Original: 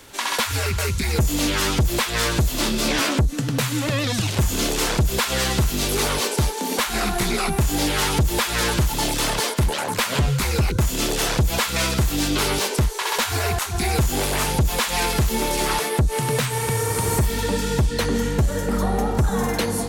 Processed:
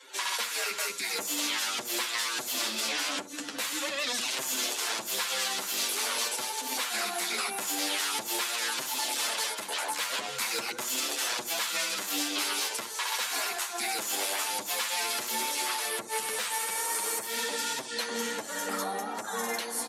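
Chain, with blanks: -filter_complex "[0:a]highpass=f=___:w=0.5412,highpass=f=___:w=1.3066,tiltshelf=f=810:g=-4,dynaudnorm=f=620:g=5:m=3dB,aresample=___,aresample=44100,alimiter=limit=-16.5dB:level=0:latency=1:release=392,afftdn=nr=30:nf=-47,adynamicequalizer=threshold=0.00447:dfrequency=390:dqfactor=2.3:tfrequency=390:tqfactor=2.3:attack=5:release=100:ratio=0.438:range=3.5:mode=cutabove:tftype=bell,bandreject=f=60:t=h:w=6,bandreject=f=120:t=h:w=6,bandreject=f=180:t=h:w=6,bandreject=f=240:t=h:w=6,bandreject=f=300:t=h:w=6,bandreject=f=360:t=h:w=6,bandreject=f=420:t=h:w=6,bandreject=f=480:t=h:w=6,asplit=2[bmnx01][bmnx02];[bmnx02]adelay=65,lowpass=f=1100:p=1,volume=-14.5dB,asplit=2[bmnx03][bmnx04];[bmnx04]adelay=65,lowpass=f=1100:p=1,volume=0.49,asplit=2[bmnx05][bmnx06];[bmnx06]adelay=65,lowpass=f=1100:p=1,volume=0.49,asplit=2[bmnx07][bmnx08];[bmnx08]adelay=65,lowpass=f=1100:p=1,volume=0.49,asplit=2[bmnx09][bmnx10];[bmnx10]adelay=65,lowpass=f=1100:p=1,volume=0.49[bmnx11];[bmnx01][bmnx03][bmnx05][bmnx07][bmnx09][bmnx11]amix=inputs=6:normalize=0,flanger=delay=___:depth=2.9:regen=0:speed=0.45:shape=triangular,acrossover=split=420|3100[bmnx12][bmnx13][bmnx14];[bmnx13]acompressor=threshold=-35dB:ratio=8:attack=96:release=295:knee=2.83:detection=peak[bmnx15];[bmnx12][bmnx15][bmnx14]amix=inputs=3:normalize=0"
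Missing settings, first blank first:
290, 290, 32000, 7.5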